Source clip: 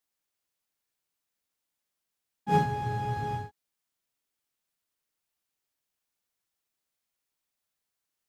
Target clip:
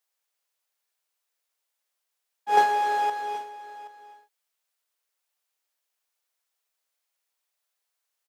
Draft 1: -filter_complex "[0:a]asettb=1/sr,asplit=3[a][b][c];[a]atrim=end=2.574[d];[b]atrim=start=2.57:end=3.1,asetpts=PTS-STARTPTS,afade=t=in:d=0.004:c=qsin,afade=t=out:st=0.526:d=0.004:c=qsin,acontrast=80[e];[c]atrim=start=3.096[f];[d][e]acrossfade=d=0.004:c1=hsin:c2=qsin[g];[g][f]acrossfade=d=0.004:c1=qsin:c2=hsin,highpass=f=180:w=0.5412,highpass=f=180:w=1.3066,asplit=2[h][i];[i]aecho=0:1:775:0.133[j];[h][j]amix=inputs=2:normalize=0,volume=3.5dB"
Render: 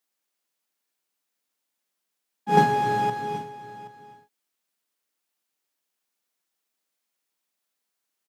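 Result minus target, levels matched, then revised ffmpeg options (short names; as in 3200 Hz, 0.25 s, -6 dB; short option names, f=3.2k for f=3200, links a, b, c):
250 Hz band +17.5 dB
-filter_complex "[0:a]asettb=1/sr,asplit=3[a][b][c];[a]atrim=end=2.574[d];[b]atrim=start=2.57:end=3.1,asetpts=PTS-STARTPTS,afade=t=in:d=0.004:c=qsin,afade=t=out:st=0.526:d=0.004:c=qsin,acontrast=80[e];[c]atrim=start=3.096[f];[d][e]acrossfade=d=0.004:c1=hsin:c2=qsin[g];[g][f]acrossfade=d=0.004:c1=qsin:c2=hsin,highpass=f=460:w=0.5412,highpass=f=460:w=1.3066,asplit=2[h][i];[i]aecho=0:1:775:0.133[j];[h][j]amix=inputs=2:normalize=0,volume=3.5dB"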